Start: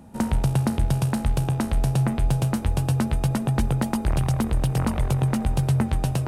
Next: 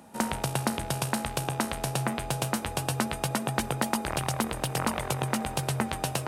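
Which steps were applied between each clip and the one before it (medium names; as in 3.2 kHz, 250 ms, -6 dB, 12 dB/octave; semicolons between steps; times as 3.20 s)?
high-pass 730 Hz 6 dB/octave; trim +4 dB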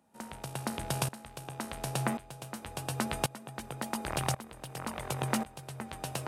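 sawtooth tremolo in dB swelling 0.92 Hz, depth 19 dB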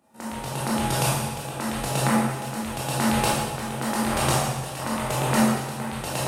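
reverberation RT60 1.3 s, pre-delay 13 ms, DRR -7.5 dB; trim +3 dB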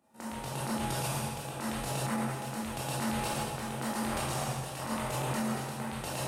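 peak limiter -17 dBFS, peak gain reduction 10 dB; trim -6.5 dB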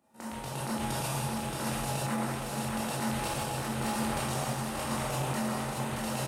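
delay 624 ms -3.5 dB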